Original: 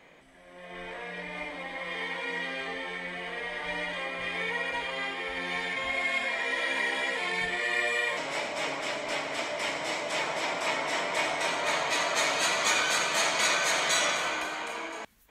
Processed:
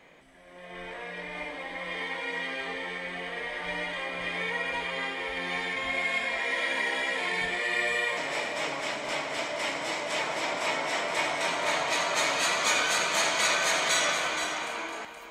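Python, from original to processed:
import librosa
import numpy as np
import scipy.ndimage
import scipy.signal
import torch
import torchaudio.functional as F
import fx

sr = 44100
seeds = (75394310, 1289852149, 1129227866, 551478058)

y = x + 10.0 ** (-9.0 / 20.0) * np.pad(x, (int(473 * sr / 1000.0), 0))[:len(x)]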